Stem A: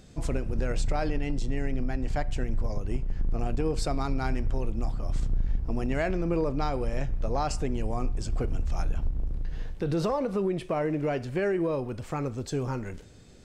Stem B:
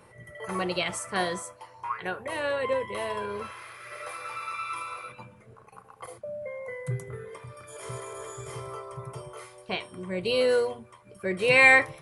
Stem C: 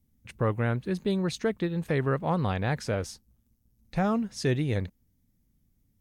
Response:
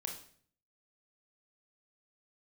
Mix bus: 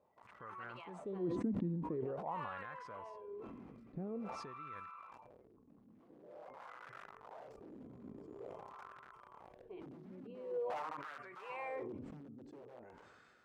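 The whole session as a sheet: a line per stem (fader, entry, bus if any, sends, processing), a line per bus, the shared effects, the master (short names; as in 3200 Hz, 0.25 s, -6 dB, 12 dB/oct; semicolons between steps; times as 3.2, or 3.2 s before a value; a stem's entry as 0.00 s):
-12.5 dB, 0.00 s, no send, de-hum 143.5 Hz, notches 29; compressor 10:1, threshold -27 dBFS, peak gain reduction 7.5 dB; wrapped overs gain 27 dB; auto duck -12 dB, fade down 0.35 s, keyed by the third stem
-14.0 dB, 0.00 s, no send, ripple EQ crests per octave 0.71, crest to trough 8 dB
-3.5 dB, 0.00 s, no send, low shelf 350 Hz +10.5 dB; compressor 6:1, threshold -26 dBFS, peak gain reduction 12 dB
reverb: off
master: wah 0.47 Hz 230–1400 Hz, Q 3.6; sustainer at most 24 dB/s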